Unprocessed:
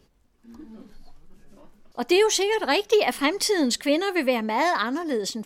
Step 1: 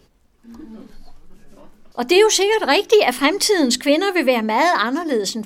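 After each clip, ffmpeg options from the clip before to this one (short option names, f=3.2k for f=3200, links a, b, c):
-af "bandreject=f=50:t=h:w=6,bandreject=f=100:t=h:w=6,bandreject=f=150:t=h:w=6,bandreject=f=200:t=h:w=6,bandreject=f=250:t=h:w=6,bandreject=f=300:t=h:w=6,bandreject=f=350:t=h:w=6,volume=6.5dB"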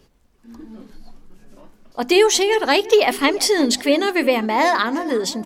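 -filter_complex "[0:a]asplit=2[a][b];[b]adelay=355,lowpass=f=1.4k:p=1,volume=-16dB,asplit=2[c][d];[d]adelay=355,lowpass=f=1.4k:p=1,volume=0.49,asplit=2[e][f];[f]adelay=355,lowpass=f=1.4k:p=1,volume=0.49,asplit=2[g][h];[h]adelay=355,lowpass=f=1.4k:p=1,volume=0.49[i];[a][c][e][g][i]amix=inputs=5:normalize=0,volume=-1dB"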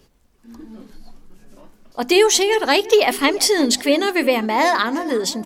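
-af "highshelf=f=5.5k:g=4"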